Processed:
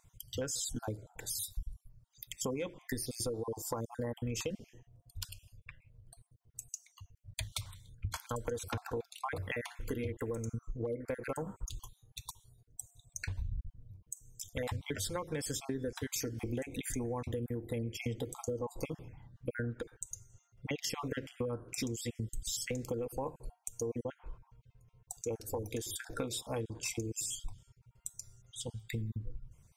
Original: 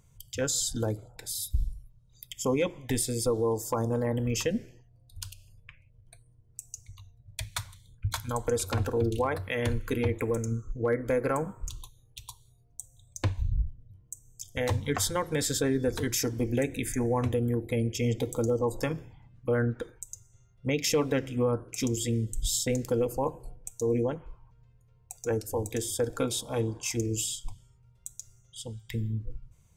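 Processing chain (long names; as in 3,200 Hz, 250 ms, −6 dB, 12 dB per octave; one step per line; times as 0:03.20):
time-frequency cells dropped at random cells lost 30%
downward compressor, threshold −34 dBFS, peak gain reduction 11.5 dB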